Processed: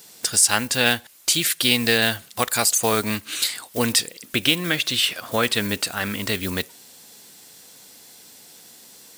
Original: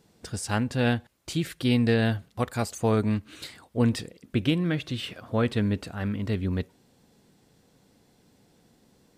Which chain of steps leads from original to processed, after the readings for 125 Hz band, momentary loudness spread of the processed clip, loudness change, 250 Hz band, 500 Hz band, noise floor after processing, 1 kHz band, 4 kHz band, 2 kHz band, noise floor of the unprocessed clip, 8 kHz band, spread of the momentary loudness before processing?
-5.5 dB, 8 LU, +7.0 dB, -1.5 dB, +3.0 dB, -48 dBFS, +7.5 dB, +15.5 dB, +11.5 dB, -63 dBFS, +21.0 dB, 10 LU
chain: block floating point 7-bit; tilt +4.5 dB/oct; in parallel at +1 dB: compressor, threshold -33 dBFS, peak gain reduction 14 dB; on the sum: gain +4.5 dB

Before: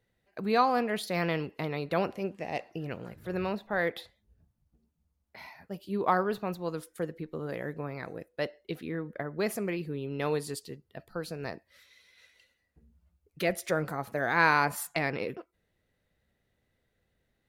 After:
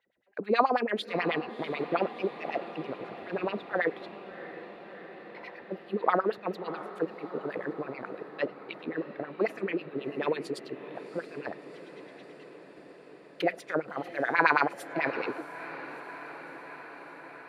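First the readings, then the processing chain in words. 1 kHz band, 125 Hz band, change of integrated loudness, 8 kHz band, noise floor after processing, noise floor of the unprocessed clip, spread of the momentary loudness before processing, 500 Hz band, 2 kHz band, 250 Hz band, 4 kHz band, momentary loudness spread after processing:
+0.5 dB, -8.0 dB, 0.0 dB, under -10 dB, -51 dBFS, -78 dBFS, 15 LU, +1.0 dB, +0.5 dB, -0.5 dB, -1.0 dB, 19 LU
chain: LFO band-pass sine 9.2 Hz 290–3200 Hz; diffused feedback echo 0.674 s, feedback 74%, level -14 dB; gain +8 dB

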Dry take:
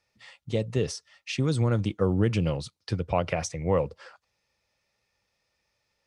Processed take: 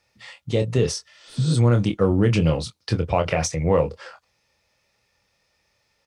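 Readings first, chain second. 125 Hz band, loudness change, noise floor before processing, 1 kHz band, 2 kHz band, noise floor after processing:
+6.5 dB, +6.0 dB, -78 dBFS, +5.5 dB, +5.5 dB, -70 dBFS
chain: doubler 25 ms -7.5 dB; in parallel at +2 dB: limiter -19 dBFS, peak gain reduction 7.5 dB; on the sum: added harmonics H 8 -42 dB, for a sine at -7.5 dBFS; spectral repair 1.13–1.5, 240–8300 Hz both

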